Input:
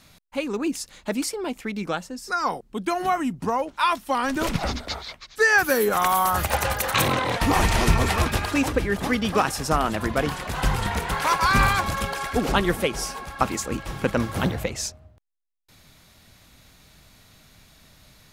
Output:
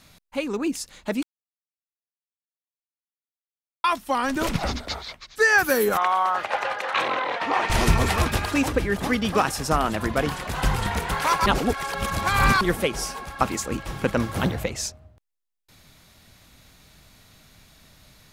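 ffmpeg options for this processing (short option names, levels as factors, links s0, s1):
-filter_complex "[0:a]asettb=1/sr,asplit=3[s0][s1][s2];[s0]atrim=end=5.974[s3];[s1]atrim=start=5.97:end=7.7,asetpts=PTS-STARTPTS,afade=t=in:d=0.004:c=qsin,afade=t=out:st=1.726:d=0.004:c=qsin,highpass=480,lowpass=3000[s4];[s2]atrim=start=7.696[s5];[s3][s4]acrossfade=d=0.004:c1=hsin:c2=qsin[s6];[s6][s5]acrossfade=d=0.004:c1=qsin:c2=hsin,asplit=5[s7][s8][s9][s10][s11];[s7]atrim=end=1.23,asetpts=PTS-STARTPTS,afade=t=out:st=1.226:d=0.004:c=hsin[s12];[s8]atrim=start=1.23:end=3.84,asetpts=PTS-STARTPTS,volume=0[s13];[s9]atrim=start=3.84:end=11.462,asetpts=PTS-STARTPTS,afade=t=in:d=0.004:c=hsin[s14];[s10]atrim=start=11.458:end=12.612,asetpts=PTS-STARTPTS,areverse[s15];[s11]atrim=start=12.608[s16];[s12][s13][s14]concat=n=3:v=0:a=1[s17];[s17][s15]acrossfade=d=0.004:c1=hsin:c2=hsin[s18];[s18][s16]acrossfade=d=0.004:c1=hsin:c2=hsin"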